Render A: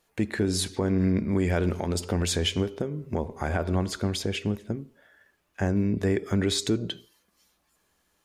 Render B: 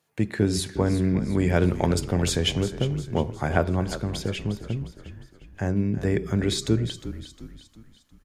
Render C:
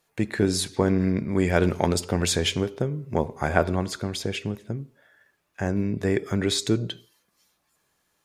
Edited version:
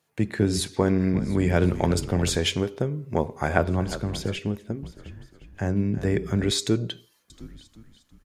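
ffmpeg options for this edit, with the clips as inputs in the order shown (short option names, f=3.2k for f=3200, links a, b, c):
-filter_complex "[2:a]asplit=3[a][b][c];[1:a]asplit=5[d][e][f][g][h];[d]atrim=end=0.612[i];[a]atrim=start=0.608:end=1.142[j];[e]atrim=start=1.138:end=2.362[k];[b]atrim=start=2.358:end=3.582[l];[f]atrim=start=3.578:end=4.392[m];[0:a]atrim=start=4.388:end=4.832[n];[g]atrim=start=4.828:end=6.512[o];[c]atrim=start=6.508:end=7.302[p];[h]atrim=start=7.298[q];[i][j]acrossfade=d=0.004:c1=hsin:c2=hsin[r];[r][k]acrossfade=d=0.004:c1=hsin:c2=hsin[s];[s][l]acrossfade=d=0.004:c1=hsin:c2=hsin[t];[t][m]acrossfade=d=0.004:c1=hsin:c2=hsin[u];[u][n]acrossfade=d=0.004:c1=hsin:c2=hsin[v];[v][o]acrossfade=d=0.004:c1=hsin:c2=hsin[w];[w][p]acrossfade=d=0.004:c1=hsin:c2=hsin[x];[x][q]acrossfade=d=0.004:c1=hsin:c2=hsin"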